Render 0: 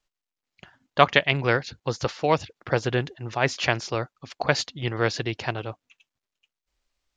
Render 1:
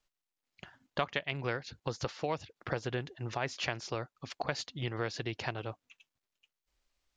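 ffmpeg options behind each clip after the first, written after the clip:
-af "acompressor=threshold=-32dB:ratio=3,volume=-2dB"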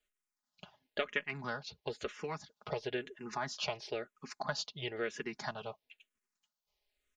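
-filter_complex "[0:a]lowshelf=f=140:g=-7,aecho=1:1:4.8:0.64,asplit=2[a][b];[b]afreqshift=-1[c];[a][c]amix=inputs=2:normalize=1"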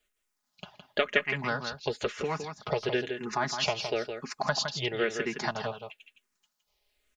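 -af "aecho=1:1:164:0.422,volume=8dB"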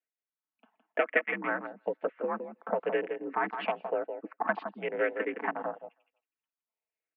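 -filter_complex "[0:a]asplit=2[a][b];[b]adelay=320,highpass=300,lowpass=3.4k,asoftclip=type=hard:threshold=-18.5dB,volume=-23dB[c];[a][c]amix=inputs=2:normalize=0,afwtdn=0.02,highpass=f=160:t=q:w=0.5412,highpass=f=160:t=q:w=1.307,lowpass=f=2.4k:t=q:w=0.5176,lowpass=f=2.4k:t=q:w=0.7071,lowpass=f=2.4k:t=q:w=1.932,afreqshift=57"

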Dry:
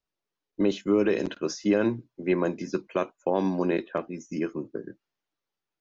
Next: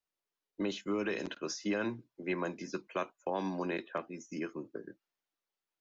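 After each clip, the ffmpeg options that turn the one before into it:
-filter_complex "[0:a]lowshelf=f=270:g=-9,acrossover=split=290|670[a][b][c];[b]acompressor=threshold=-38dB:ratio=6[d];[a][d][c]amix=inputs=3:normalize=0,volume=-3.5dB"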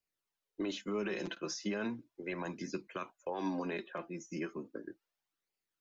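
-af "alimiter=level_in=4dB:limit=-24dB:level=0:latency=1:release=65,volume=-4dB,flanger=delay=0.4:depth=5.5:regen=30:speed=0.36:shape=sinusoidal,volume=4dB"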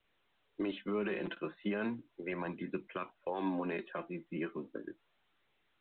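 -filter_complex "[0:a]acrossover=split=2900[a][b];[b]acompressor=threshold=-53dB:ratio=4:attack=1:release=60[c];[a][c]amix=inputs=2:normalize=0,volume=1dB" -ar 8000 -c:a pcm_mulaw

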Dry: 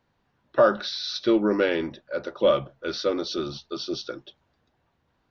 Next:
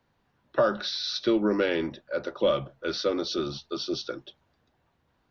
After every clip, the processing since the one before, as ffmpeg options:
-filter_complex "[0:a]acrossover=split=190|3000[a][b][c];[b]acompressor=threshold=-23dB:ratio=2[d];[a][d][c]amix=inputs=3:normalize=0"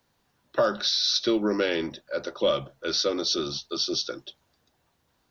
-af "bass=f=250:g=-2,treble=f=4k:g=13"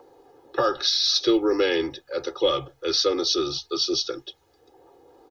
-filter_complex "[0:a]aecho=1:1:2.4:0.95,acrossover=split=320|670[a][b][c];[b]acompressor=mode=upward:threshold=-33dB:ratio=2.5[d];[a][d][c]amix=inputs=3:normalize=0"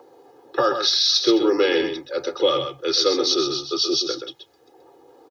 -filter_complex "[0:a]highpass=130,asplit=2[a][b];[b]aecho=0:1:127:0.422[c];[a][c]amix=inputs=2:normalize=0,volume=2.5dB"

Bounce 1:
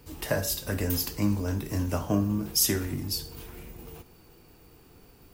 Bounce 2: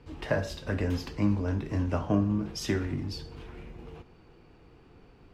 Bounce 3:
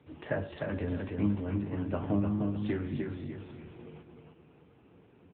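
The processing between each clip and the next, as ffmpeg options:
-af "lowpass=3k"
-filter_complex "[0:a]asplit=2[a][b];[b]aecho=0:1:303|606|909|1212:0.631|0.202|0.0646|0.0207[c];[a][c]amix=inputs=2:normalize=0,volume=-3.5dB" -ar 8000 -c:a libopencore_amrnb -b:a 7950

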